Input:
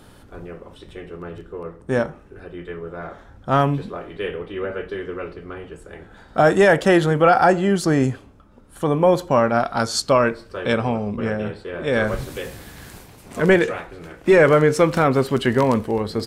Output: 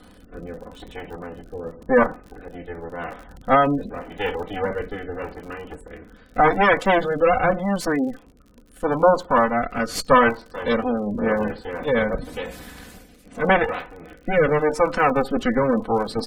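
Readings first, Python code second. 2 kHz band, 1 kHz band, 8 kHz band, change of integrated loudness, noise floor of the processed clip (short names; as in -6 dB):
-0.5 dB, +1.0 dB, -6.0 dB, -2.0 dB, -50 dBFS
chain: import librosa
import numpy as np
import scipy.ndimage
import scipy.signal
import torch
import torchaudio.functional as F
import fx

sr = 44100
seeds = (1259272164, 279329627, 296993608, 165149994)

y = fx.lower_of_two(x, sr, delay_ms=4.0)
y = fx.spec_gate(y, sr, threshold_db=-25, keep='strong')
y = fx.dynamic_eq(y, sr, hz=1000.0, q=1.1, threshold_db=-33.0, ratio=4.0, max_db=6)
y = fx.rider(y, sr, range_db=4, speed_s=2.0)
y = fx.dmg_crackle(y, sr, seeds[0], per_s=54.0, level_db=-34.0)
y = fx.rotary(y, sr, hz=0.85)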